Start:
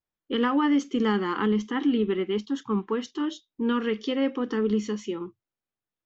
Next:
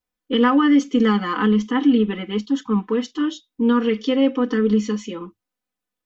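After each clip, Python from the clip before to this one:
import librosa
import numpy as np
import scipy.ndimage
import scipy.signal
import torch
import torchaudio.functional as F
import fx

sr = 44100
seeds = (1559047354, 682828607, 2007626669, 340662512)

y = x + 0.99 * np.pad(x, (int(4.0 * sr / 1000.0), 0))[:len(x)]
y = F.gain(torch.from_numpy(y), 2.5).numpy()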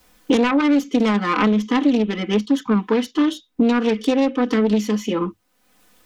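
y = fx.self_delay(x, sr, depth_ms=0.27)
y = fx.band_squash(y, sr, depth_pct=100)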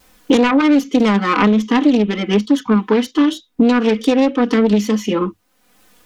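y = fx.vibrato(x, sr, rate_hz=3.3, depth_cents=52.0)
y = F.gain(torch.from_numpy(y), 4.0).numpy()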